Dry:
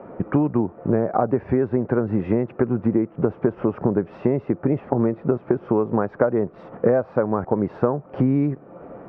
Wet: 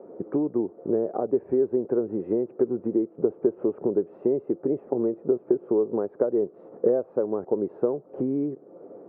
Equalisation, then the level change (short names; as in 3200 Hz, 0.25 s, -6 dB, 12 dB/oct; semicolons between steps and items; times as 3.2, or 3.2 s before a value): band-pass 400 Hz, Q 2.5; 0.0 dB